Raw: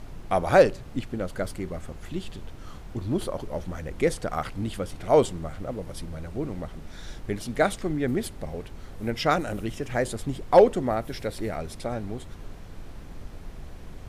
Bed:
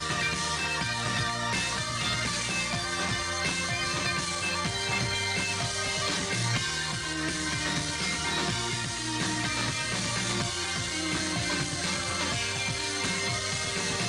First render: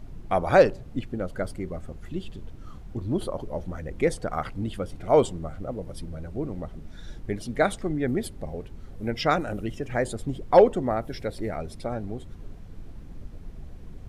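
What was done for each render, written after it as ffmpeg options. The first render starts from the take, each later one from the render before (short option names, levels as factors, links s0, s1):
-af "afftdn=nr=9:nf=-42"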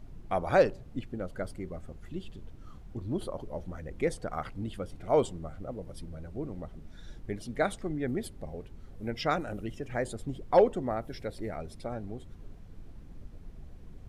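-af "volume=0.501"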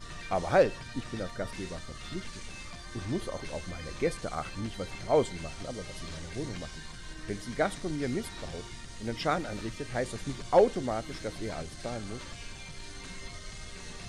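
-filter_complex "[1:a]volume=0.158[s0];[0:a][s0]amix=inputs=2:normalize=0"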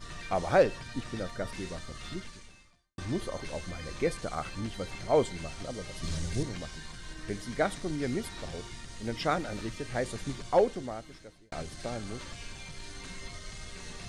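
-filter_complex "[0:a]asettb=1/sr,asplit=3[s0][s1][s2];[s0]atrim=end=6.034[s3];[s1]atrim=start=6.03:end=6.43,asetpts=PTS-STARTPTS,afade=t=in:d=0.004:c=qsin,afade=t=out:st=0.396:d=0.004:c=qsin,bass=f=250:g=9,treble=f=4000:g=7[s4];[s2]atrim=start=6.426[s5];[s3][s4]acrossfade=d=0.004:c1=hsin:c2=qsin[s6];[s6][s5]acrossfade=d=0.004:c1=qsin:c2=hsin,asplit=3[s7][s8][s9];[s7]atrim=end=2.98,asetpts=PTS-STARTPTS,afade=t=out:st=2.1:d=0.88:c=qua[s10];[s8]atrim=start=2.98:end=11.52,asetpts=PTS-STARTPTS,afade=t=in:d=0.004:c=hsin,afade=t=out:st=7.31:d=1.23[s11];[s9]atrim=start=11.52,asetpts=PTS-STARTPTS,afade=t=in:d=0.004:c=hsin[s12];[s10][s11][s12]concat=n=3:v=0:a=1"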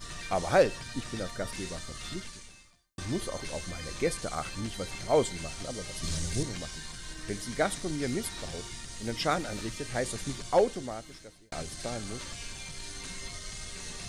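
-af "highshelf=f=4900:g=10.5"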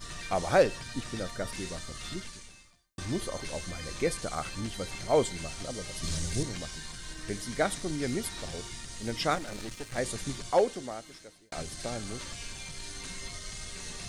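-filter_complex "[0:a]asettb=1/sr,asplit=3[s0][s1][s2];[s0]atrim=end=9.354[s3];[s1]atrim=start=9.35:end=9.98,asetpts=PTS-STARTPTS,afade=t=in:d=0.004:c=qsin,afade=t=out:st=0.626:d=0.004:c=qsin,aeval=exprs='if(lt(val(0),0),0.251*val(0),val(0))':c=same[s4];[s2]atrim=start=9.976[s5];[s3][s4]acrossfade=d=0.004:c1=hsin:c2=qsin[s6];[s6][s5]acrossfade=d=0.004:c1=qsin:c2=hsin,asettb=1/sr,asplit=3[s7][s8][s9];[s7]atrim=end=10.504[s10];[s8]atrim=start=10.5:end=11.57,asetpts=PTS-STARTPTS,afade=t=in:d=0.004:c=qsin,afade=t=out:st=1.066:d=0.004:c=qsin,lowshelf=f=120:g=-11[s11];[s9]atrim=start=11.566[s12];[s10][s11]acrossfade=d=0.004:c1=hsin:c2=qsin[s13];[s13][s12]acrossfade=d=0.004:c1=qsin:c2=hsin"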